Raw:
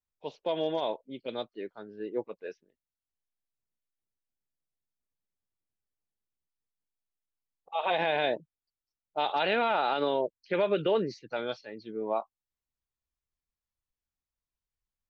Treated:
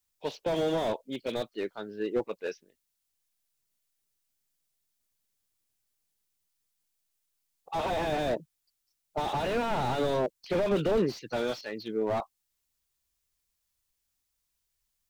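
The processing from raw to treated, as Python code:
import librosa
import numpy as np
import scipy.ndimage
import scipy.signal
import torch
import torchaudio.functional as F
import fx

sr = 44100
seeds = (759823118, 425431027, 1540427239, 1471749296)

y = fx.high_shelf(x, sr, hz=2800.0, db=11.5)
y = fx.slew_limit(y, sr, full_power_hz=19.0)
y = y * librosa.db_to_amplitude(5.0)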